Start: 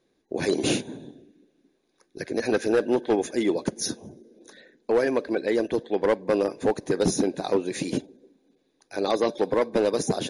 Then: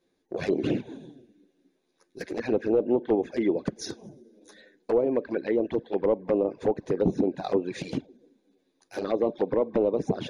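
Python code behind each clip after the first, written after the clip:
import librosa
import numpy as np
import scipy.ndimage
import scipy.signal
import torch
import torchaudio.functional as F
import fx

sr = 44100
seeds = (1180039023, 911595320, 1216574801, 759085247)

y = fx.env_lowpass_down(x, sr, base_hz=1100.0, full_db=-18.5)
y = fx.env_flanger(y, sr, rest_ms=11.5, full_db=-19.5)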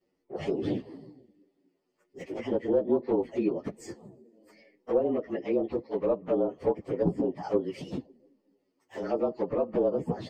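y = fx.partial_stretch(x, sr, pct=109)
y = fx.lowpass(y, sr, hz=3000.0, slope=6)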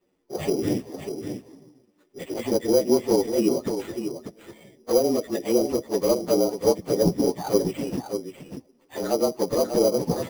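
y = fx.sample_hold(x, sr, seeds[0], rate_hz=5400.0, jitter_pct=0)
y = y + 10.0 ** (-8.0 / 20.0) * np.pad(y, (int(593 * sr / 1000.0), 0))[:len(y)]
y = y * 10.0 ** (5.5 / 20.0)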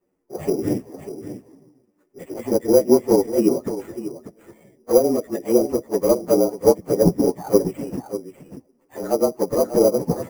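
y = fx.peak_eq(x, sr, hz=3600.0, db=-14.5, octaves=1.0)
y = fx.upward_expand(y, sr, threshold_db=-30.0, expansion=1.5)
y = y * 10.0 ** (6.5 / 20.0)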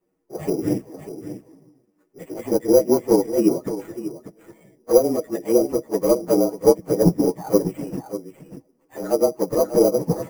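y = x + 0.36 * np.pad(x, (int(6.3 * sr / 1000.0), 0))[:len(x)]
y = y * 10.0 ** (-1.0 / 20.0)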